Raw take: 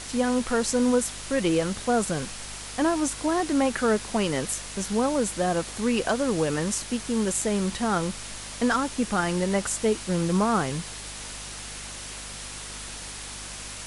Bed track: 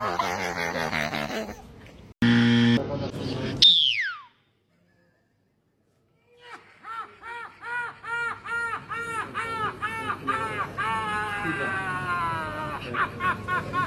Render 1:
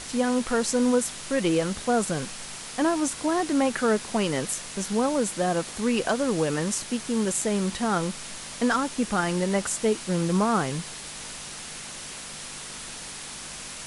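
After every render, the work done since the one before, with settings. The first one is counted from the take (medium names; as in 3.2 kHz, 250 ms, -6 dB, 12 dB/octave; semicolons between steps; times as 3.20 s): de-hum 50 Hz, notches 2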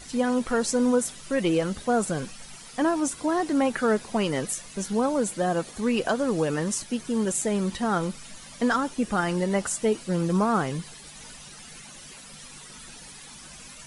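noise reduction 12 dB, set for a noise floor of -39 dBFS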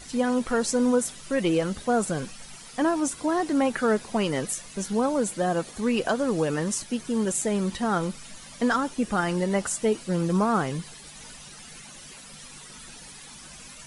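no audible change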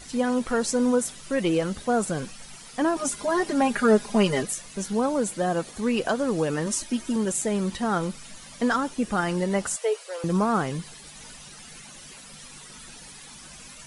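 2.96–4.43 s: comb 4.9 ms, depth 100%; 6.66–7.16 s: comb 3.2 ms, depth 73%; 9.76–10.24 s: Chebyshev high-pass 420 Hz, order 6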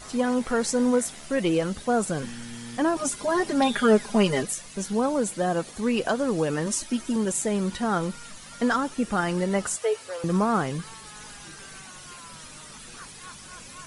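add bed track -20.5 dB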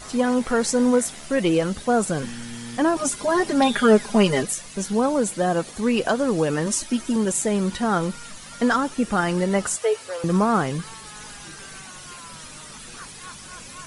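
trim +3.5 dB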